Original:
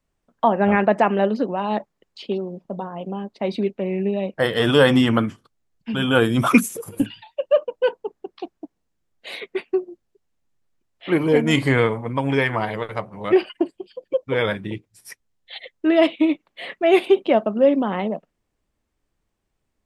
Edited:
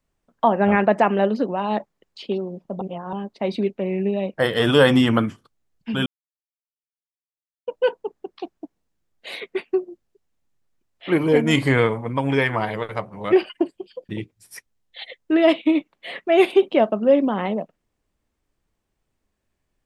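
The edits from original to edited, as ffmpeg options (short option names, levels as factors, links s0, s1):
-filter_complex "[0:a]asplit=6[s0][s1][s2][s3][s4][s5];[s0]atrim=end=2.812[s6];[s1]atrim=start=2.808:end=3.132,asetpts=PTS-STARTPTS,areverse[s7];[s2]atrim=start=3.128:end=6.06,asetpts=PTS-STARTPTS,afade=t=out:st=2.928:d=0.004:c=hsin[s8];[s3]atrim=start=6.06:end=7.67,asetpts=PTS-STARTPTS,volume=0[s9];[s4]atrim=start=7.67:end=14.092,asetpts=PTS-STARTPTS,afade=t=in:d=0.004:c=hsin[s10];[s5]atrim=start=14.628[s11];[s6][s7]acrossfade=d=0.004:c1=hsin:c2=hsin[s12];[s8][s9][s10]concat=n=3:v=0:a=1[s13];[s12][s13]acrossfade=d=0.004:c1=hsin:c2=hsin[s14];[s14][s11]acrossfade=d=0.004:c1=hsin:c2=hsin"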